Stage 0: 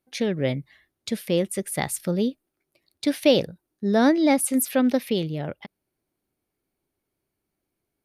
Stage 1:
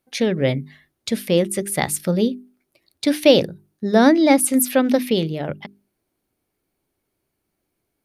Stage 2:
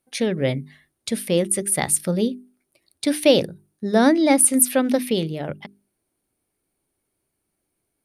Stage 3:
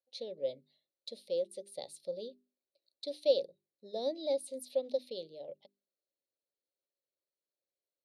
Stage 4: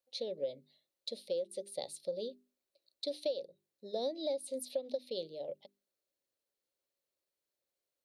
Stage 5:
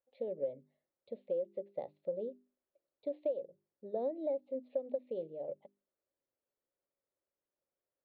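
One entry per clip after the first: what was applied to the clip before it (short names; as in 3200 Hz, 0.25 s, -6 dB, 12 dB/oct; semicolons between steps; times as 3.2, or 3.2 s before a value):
notches 50/100/150/200/250/300/350/400 Hz; gain +5.5 dB
bell 9400 Hz +11 dB 0.3 oct; gain -2.5 dB
double band-pass 1500 Hz, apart 2.9 oct; gain -8.5 dB
compressor 10:1, threshold -36 dBFS, peak gain reduction 15 dB; gain +4 dB
Bessel low-pass 1300 Hz, order 6; gain +1 dB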